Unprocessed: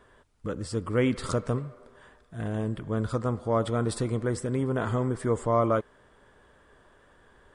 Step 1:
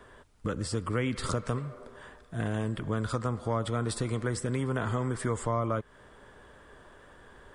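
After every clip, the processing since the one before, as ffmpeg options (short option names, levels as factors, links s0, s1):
-filter_complex "[0:a]acrossover=split=190|1000[s0][s1][s2];[s0]acompressor=threshold=0.0126:ratio=4[s3];[s1]acompressor=threshold=0.0112:ratio=4[s4];[s2]acompressor=threshold=0.01:ratio=4[s5];[s3][s4][s5]amix=inputs=3:normalize=0,volume=1.78"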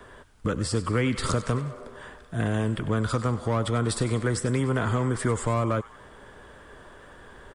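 -filter_complex "[0:a]acrossover=split=450|1100[s0][s1][s2];[s1]asoftclip=type=hard:threshold=0.0168[s3];[s2]asplit=6[s4][s5][s6][s7][s8][s9];[s5]adelay=97,afreqshift=-80,volume=0.211[s10];[s6]adelay=194,afreqshift=-160,volume=0.11[s11];[s7]adelay=291,afreqshift=-240,volume=0.0569[s12];[s8]adelay=388,afreqshift=-320,volume=0.0299[s13];[s9]adelay=485,afreqshift=-400,volume=0.0155[s14];[s4][s10][s11][s12][s13][s14]amix=inputs=6:normalize=0[s15];[s0][s3][s15]amix=inputs=3:normalize=0,volume=1.88"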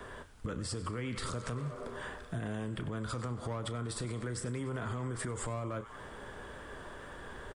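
-filter_complex "[0:a]asplit=2[s0][s1];[s1]adelay=33,volume=0.251[s2];[s0][s2]amix=inputs=2:normalize=0,alimiter=limit=0.0668:level=0:latency=1:release=95,acompressor=threshold=0.0141:ratio=3,volume=1.12"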